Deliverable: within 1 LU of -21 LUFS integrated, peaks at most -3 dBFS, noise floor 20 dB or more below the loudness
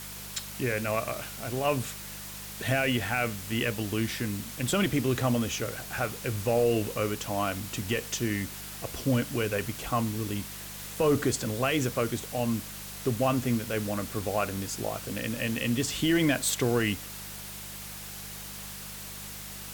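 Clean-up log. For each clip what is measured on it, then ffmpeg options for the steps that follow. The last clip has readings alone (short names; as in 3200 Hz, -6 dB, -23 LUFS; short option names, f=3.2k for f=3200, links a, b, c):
hum 50 Hz; harmonics up to 200 Hz; hum level -46 dBFS; noise floor -41 dBFS; noise floor target -50 dBFS; loudness -30.0 LUFS; peak -15.0 dBFS; loudness target -21.0 LUFS
-> -af "bandreject=f=50:t=h:w=4,bandreject=f=100:t=h:w=4,bandreject=f=150:t=h:w=4,bandreject=f=200:t=h:w=4"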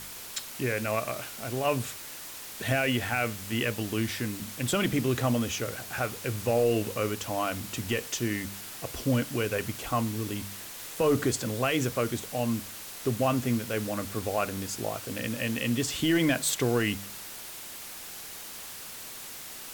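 hum none; noise floor -42 dBFS; noise floor target -50 dBFS
-> -af "afftdn=nr=8:nf=-42"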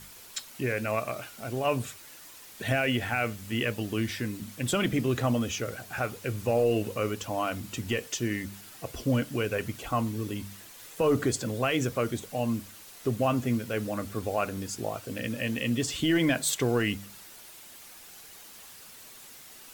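noise floor -49 dBFS; noise floor target -50 dBFS
-> -af "afftdn=nr=6:nf=-49"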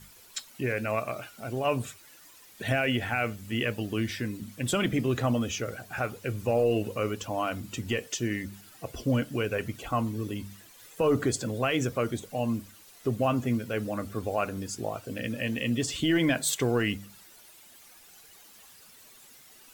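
noise floor -54 dBFS; loudness -30.0 LUFS; peak -15.0 dBFS; loudness target -21.0 LUFS
-> -af "volume=9dB"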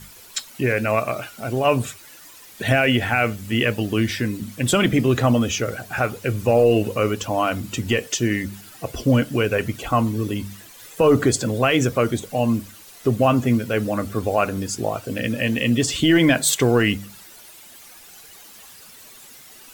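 loudness -21.0 LUFS; peak -6.0 dBFS; noise floor -45 dBFS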